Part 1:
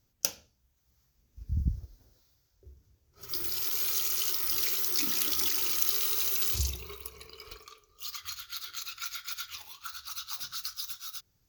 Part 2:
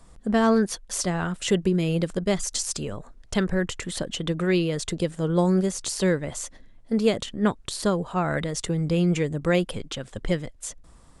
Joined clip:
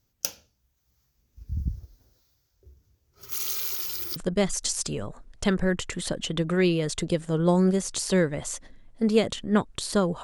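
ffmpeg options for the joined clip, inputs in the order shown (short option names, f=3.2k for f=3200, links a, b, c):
-filter_complex "[0:a]apad=whole_dur=10.23,atrim=end=10.23,asplit=2[a][b];[a]atrim=end=3.322[c];[b]atrim=start=3.318:end=4.162,asetpts=PTS-STARTPTS,areverse[d];[1:a]atrim=start=2.058:end=8.13[e];[c][d]acrossfade=d=0.004:c1=hsin:c2=hsin[f];[f][e]acrossfade=d=0.004:c1=hsin:c2=hsin"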